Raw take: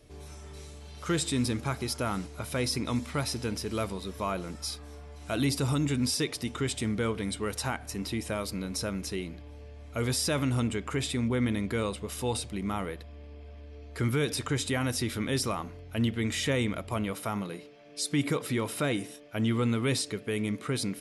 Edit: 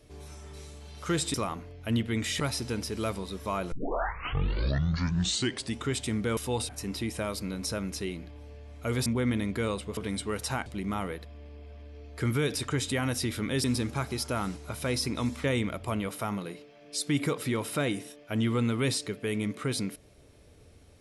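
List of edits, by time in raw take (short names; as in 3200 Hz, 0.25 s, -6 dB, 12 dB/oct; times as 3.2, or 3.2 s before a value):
1.34–3.14 swap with 15.42–16.48
4.46 tape start 2.10 s
7.11–7.8 swap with 12.12–12.44
10.17–11.21 cut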